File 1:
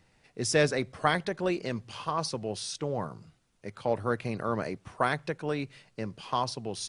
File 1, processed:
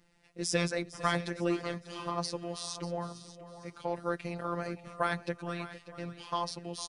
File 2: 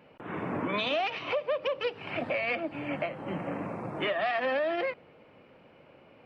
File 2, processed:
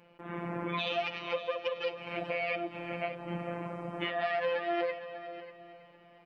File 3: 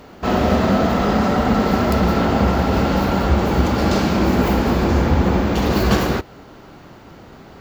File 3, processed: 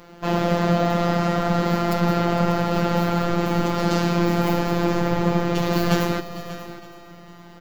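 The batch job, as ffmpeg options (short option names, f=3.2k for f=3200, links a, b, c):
-filter_complex "[0:a]asplit=2[a][b];[b]aecho=0:1:592:0.188[c];[a][c]amix=inputs=2:normalize=0,afftfilt=real='hypot(re,im)*cos(PI*b)':imag='0':win_size=1024:overlap=0.75,asplit=2[d][e];[e]aecho=0:1:457|914|1371|1828:0.158|0.0682|0.0293|0.0126[f];[d][f]amix=inputs=2:normalize=0"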